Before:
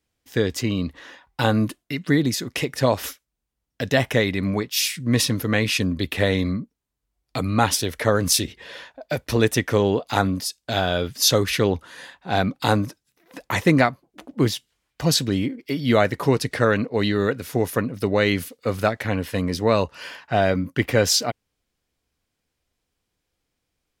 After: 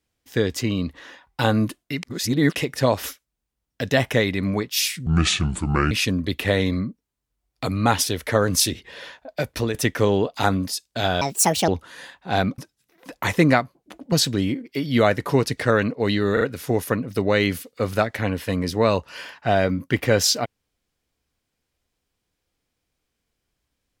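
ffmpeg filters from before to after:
ffmpeg -i in.wav -filter_complex "[0:a]asplit=12[link_01][link_02][link_03][link_04][link_05][link_06][link_07][link_08][link_09][link_10][link_11][link_12];[link_01]atrim=end=2.032[link_13];[link_02]atrim=start=2.028:end=2.562,asetpts=PTS-STARTPTS,areverse[link_14];[link_03]atrim=start=2.558:end=5.064[link_15];[link_04]atrim=start=5.06:end=5.64,asetpts=PTS-STARTPTS,asetrate=29988,aresample=44100[link_16];[link_05]atrim=start=5.636:end=9.47,asetpts=PTS-STARTPTS,afade=type=out:start_time=3.574:duration=0.26:curve=qsin:silence=0.237137[link_17];[link_06]atrim=start=9.47:end=10.944,asetpts=PTS-STARTPTS,afade=type=in:duration=0.004:curve=hsin:silence=0.237137[link_18];[link_07]atrim=start=10.94:end=11.68,asetpts=PTS-STARTPTS,asetrate=69678,aresample=44100,atrim=end_sample=20654,asetpts=PTS-STARTPTS[link_19];[link_08]atrim=start=11.676:end=12.582[link_20];[link_09]atrim=start=12.858:end=14.402[link_21];[link_10]atrim=start=15.058:end=17.312[link_22];[link_11]atrim=start=17.268:end=17.312[link_23];[link_12]atrim=start=17.268[link_24];[link_13][link_14]acrossfade=duration=0.004:curve1=hsin:curve2=hsin[link_25];[link_25][link_15]acrossfade=duration=0.004:curve1=hsin:curve2=hsin[link_26];[link_26][link_16]acrossfade=duration=0.004:curve1=hsin:curve2=hsin[link_27];[link_17][link_18]concat=n=2:v=0:a=1[link_28];[link_27][link_28]acrossfade=duration=0.004:curve1=hsin:curve2=hsin[link_29];[link_29][link_19]acrossfade=duration=0.004:curve1=hsin:curve2=hsin[link_30];[link_30][link_20]acrossfade=duration=0.004:curve1=hsin:curve2=hsin[link_31];[link_31][link_21]acrossfade=duration=0.004:curve1=hsin:curve2=hsin[link_32];[link_32][link_22]acrossfade=duration=0.004:curve1=hsin:curve2=hsin[link_33];[link_33][link_23]acrossfade=duration=0.004:curve1=hsin:curve2=hsin[link_34];[link_34][link_24]acrossfade=duration=0.004:curve1=hsin:curve2=hsin" out.wav

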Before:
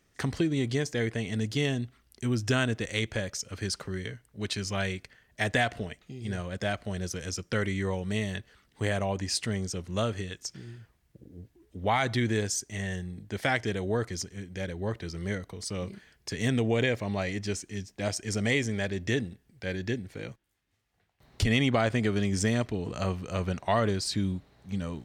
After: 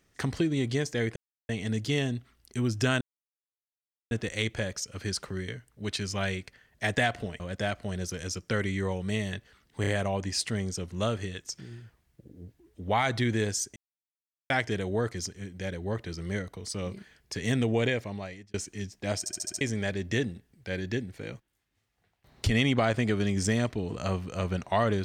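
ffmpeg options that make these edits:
ffmpeg -i in.wav -filter_complex "[0:a]asplit=15[link_01][link_02][link_03][link_04][link_05][link_06][link_07][link_08][link_09][link_10][link_11][link_12][link_13][link_14][link_15];[link_01]atrim=end=1.16,asetpts=PTS-STARTPTS,afade=type=out:start_time=1.156:duration=0.004:curve=hsin,apad=pad_dur=0.33[link_16];[link_02]atrim=start=1.16:end=2.68,asetpts=PTS-STARTPTS,afade=type=in:duration=0.004:curve=hsin,afade=type=out:start_time=1.516:duration=0.004:curve=hsin,apad=pad_dur=1.1[link_17];[link_03]atrim=start=2.68:end=5.972,asetpts=PTS-STARTPTS,afade=type=in:duration=0.004:curve=hsin[link_18];[link_04]atrim=start=6.418:end=8.862[link_19];[link_05]atrim=start=8.828:end=8.862[link_20];[link_06]atrim=start=8.828:end=12.72,asetpts=PTS-STARTPTS,afade=type=out:start_time=3.888:duration=0.004:curve=hsin[link_21];[link_07]atrim=start=12.72:end=13.46,asetpts=PTS-STARTPTS,volume=0[link_22];[link_08]atrim=start=13.46:end=17.5,asetpts=PTS-STARTPTS,afade=type=in:duration=0.004:curve=hsin,afade=type=out:start_time=3.31:duration=0.73[link_23];[link_09]atrim=start=17.5:end=18.222,asetpts=PTS-STARTPTS,afade=type=in:duration=0.004:curve=hsin[link_24];[link_10]atrim=start=18.148:end=18.222[link_25];[link_11]atrim=start=18.148:end=18.222[link_26];[link_12]atrim=start=18.148:end=18.222[link_27];[link_13]atrim=start=18.148:end=18.222[link_28];[link_14]atrim=start=18.148:end=18.222[link_29];[link_15]atrim=start=18.568[link_30];[link_16][link_17][link_18]concat=n=3:v=0:a=1[link_31];[link_31][link_19]acrossfade=duration=0.004:curve1=hsin:curve2=hsin[link_32];[link_32][link_20]acrossfade=duration=0.004:curve1=hsin:curve2=hsin[link_33];[link_21][link_22][link_23][link_24]concat=n=4:v=0:a=1[link_34];[link_33][link_34]acrossfade=duration=0.004:curve1=hsin:curve2=hsin[link_35];[link_35][link_25]acrossfade=duration=0.004:curve1=hsin:curve2=hsin[link_36];[link_36][link_26]acrossfade=duration=0.004:curve1=hsin:curve2=hsin[link_37];[link_37][link_27]acrossfade=duration=0.004:curve1=hsin:curve2=hsin[link_38];[link_38][link_28]acrossfade=duration=0.004:curve1=hsin:curve2=hsin[link_39];[link_39][link_29]acrossfade=duration=0.004:curve1=hsin:curve2=hsin[link_40];[link_40][link_30]acrossfade=duration=0.004:curve1=hsin:curve2=hsin" out.wav

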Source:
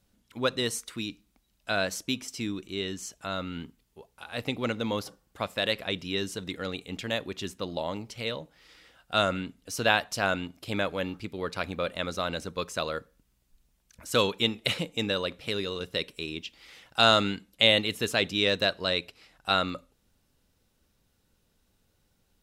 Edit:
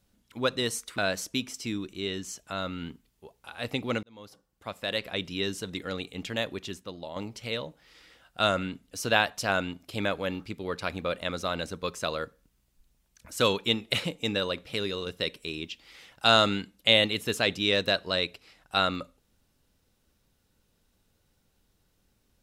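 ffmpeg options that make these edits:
ffmpeg -i in.wav -filter_complex "[0:a]asplit=4[link_01][link_02][link_03][link_04];[link_01]atrim=end=0.982[link_05];[link_02]atrim=start=1.718:end=4.77,asetpts=PTS-STARTPTS,afade=type=out:start_time=3.048:duration=0.004:curve=hsin[link_06];[link_03]atrim=start=4.77:end=7.9,asetpts=PTS-STARTPTS,afade=type=in:duration=1.25,afade=type=out:start_time=2.53:duration=0.6:curve=qua:silence=0.398107[link_07];[link_04]atrim=start=7.9,asetpts=PTS-STARTPTS,afade=type=in:duration=0.004:curve=hsin:silence=0.398107[link_08];[link_06][link_07][link_08]concat=n=3:v=0:a=1[link_09];[link_05][link_09]acrossfade=duration=0.004:curve1=hsin:curve2=hsin" out.wav

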